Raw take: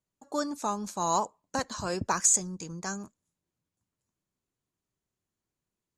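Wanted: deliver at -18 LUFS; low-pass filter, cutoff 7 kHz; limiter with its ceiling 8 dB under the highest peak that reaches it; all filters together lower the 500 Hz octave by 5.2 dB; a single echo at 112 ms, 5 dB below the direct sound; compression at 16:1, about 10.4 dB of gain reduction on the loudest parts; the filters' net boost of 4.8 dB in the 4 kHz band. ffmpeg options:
-af "lowpass=7000,equalizer=f=500:t=o:g=-7,equalizer=f=4000:t=o:g=6.5,acompressor=threshold=0.0316:ratio=16,alimiter=level_in=1.41:limit=0.0631:level=0:latency=1,volume=0.708,aecho=1:1:112:0.562,volume=9.44"

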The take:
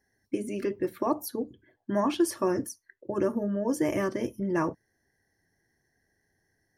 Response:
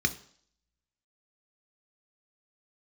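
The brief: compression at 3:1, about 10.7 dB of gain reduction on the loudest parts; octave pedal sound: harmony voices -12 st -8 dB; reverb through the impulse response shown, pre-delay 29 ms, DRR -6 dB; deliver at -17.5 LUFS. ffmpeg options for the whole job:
-filter_complex "[0:a]acompressor=threshold=0.02:ratio=3,asplit=2[s0][s1];[1:a]atrim=start_sample=2205,adelay=29[s2];[s1][s2]afir=irnorm=-1:irlink=0,volume=0.75[s3];[s0][s3]amix=inputs=2:normalize=0,asplit=2[s4][s5];[s5]asetrate=22050,aresample=44100,atempo=2,volume=0.398[s6];[s4][s6]amix=inputs=2:normalize=0,volume=2.99"

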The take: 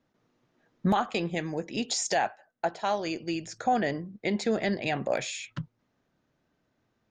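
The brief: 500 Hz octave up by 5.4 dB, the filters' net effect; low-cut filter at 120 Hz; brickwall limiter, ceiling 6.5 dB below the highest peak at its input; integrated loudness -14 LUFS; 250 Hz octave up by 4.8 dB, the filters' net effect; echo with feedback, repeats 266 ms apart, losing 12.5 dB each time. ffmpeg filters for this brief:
-af "highpass=120,equalizer=f=250:t=o:g=5.5,equalizer=f=500:t=o:g=5.5,alimiter=limit=0.15:level=0:latency=1,aecho=1:1:266|532|798:0.237|0.0569|0.0137,volume=5.01"

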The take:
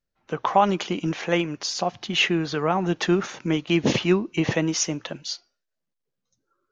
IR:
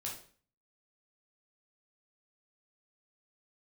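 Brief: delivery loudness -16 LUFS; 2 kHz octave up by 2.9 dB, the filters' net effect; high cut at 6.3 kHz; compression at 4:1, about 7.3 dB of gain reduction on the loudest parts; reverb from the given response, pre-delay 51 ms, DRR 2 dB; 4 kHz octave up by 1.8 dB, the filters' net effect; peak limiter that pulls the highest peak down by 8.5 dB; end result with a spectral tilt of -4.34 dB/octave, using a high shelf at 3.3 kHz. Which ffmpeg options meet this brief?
-filter_complex "[0:a]lowpass=6300,equalizer=f=2000:t=o:g=4.5,highshelf=f=3300:g=-8,equalizer=f=4000:t=o:g=7,acompressor=threshold=0.0794:ratio=4,alimiter=limit=0.141:level=0:latency=1,asplit=2[s0][s1];[1:a]atrim=start_sample=2205,adelay=51[s2];[s1][s2]afir=irnorm=-1:irlink=0,volume=0.841[s3];[s0][s3]amix=inputs=2:normalize=0,volume=3.55"

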